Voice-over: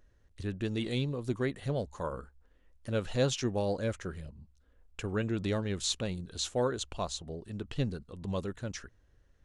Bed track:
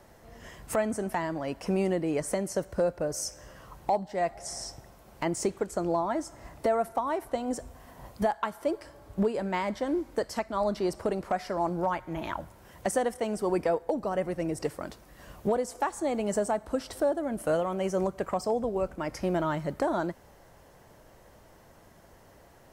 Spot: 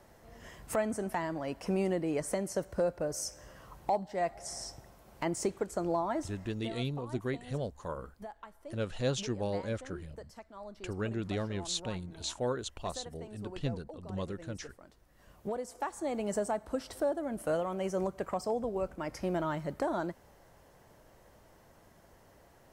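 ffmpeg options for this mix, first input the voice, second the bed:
-filter_complex "[0:a]adelay=5850,volume=0.708[s0];[1:a]volume=3.35,afade=t=out:st=6.21:d=0.46:silence=0.177828,afade=t=in:st=14.9:d=1.33:silence=0.199526[s1];[s0][s1]amix=inputs=2:normalize=0"

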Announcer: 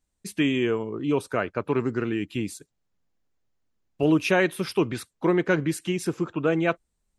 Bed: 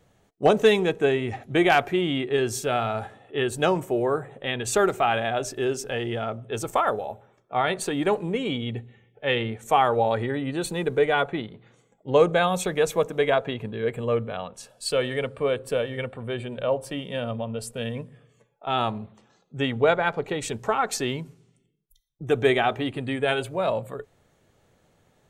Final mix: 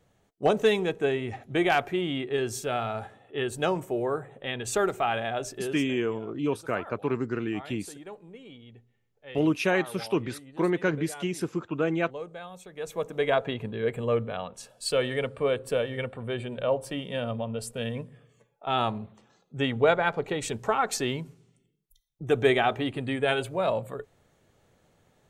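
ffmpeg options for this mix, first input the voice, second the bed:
-filter_complex "[0:a]adelay=5350,volume=0.668[s0];[1:a]volume=5.01,afade=t=out:st=5.48:d=0.49:silence=0.16788,afade=t=in:st=12.72:d=0.7:silence=0.11885[s1];[s0][s1]amix=inputs=2:normalize=0"

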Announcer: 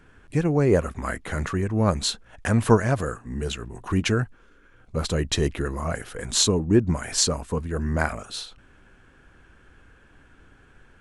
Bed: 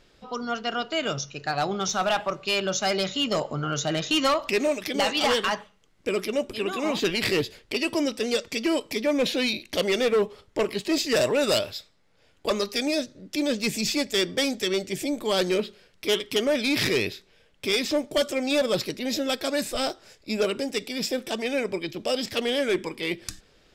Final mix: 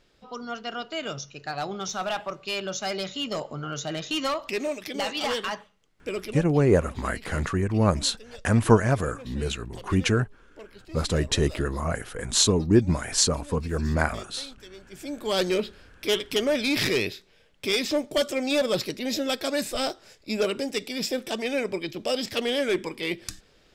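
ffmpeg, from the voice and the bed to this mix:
-filter_complex "[0:a]adelay=6000,volume=1[s0];[1:a]volume=5.62,afade=t=out:st=6.19:d=0.5:silence=0.16788,afade=t=in:st=14.88:d=0.51:silence=0.1[s1];[s0][s1]amix=inputs=2:normalize=0"

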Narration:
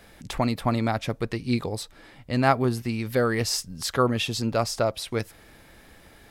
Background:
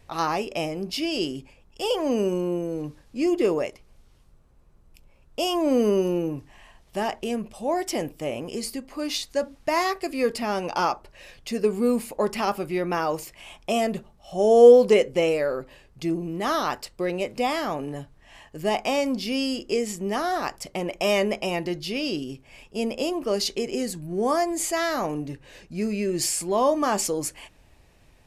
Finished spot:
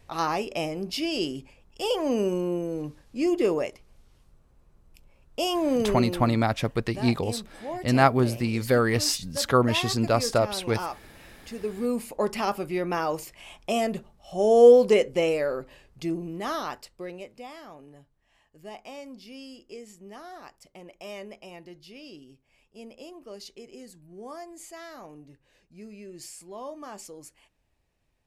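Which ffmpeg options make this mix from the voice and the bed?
-filter_complex "[0:a]adelay=5550,volume=1.19[s0];[1:a]volume=2,afade=t=out:st=5.55:d=0.65:silence=0.398107,afade=t=in:st=11.64:d=0.54:silence=0.421697,afade=t=out:st=15.85:d=1.58:silence=0.16788[s1];[s0][s1]amix=inputs=2:normalize=0"

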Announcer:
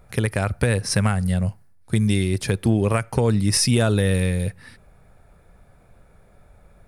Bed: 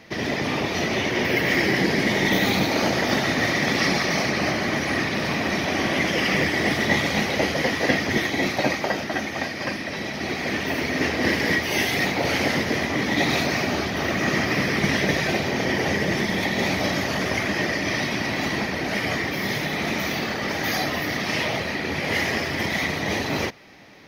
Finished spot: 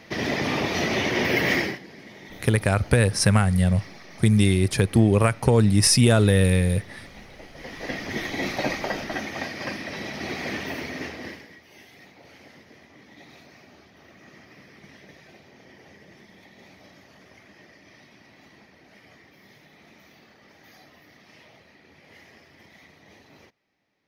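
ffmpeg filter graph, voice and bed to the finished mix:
-filter_complex "[0:a]adelay=2300,volume=1.19[s0];[1:a]volume=8.91,afade=t=out:st=1.52:d=0.27:silence=0.0707946,afade=t=in:st=7.52:d=1.02:silence=0.105925,afade=t=out:st=10.44:d=1.04:silence=0.0668344[s1];[s0][s1]amix=inputs=2:normalize=0"

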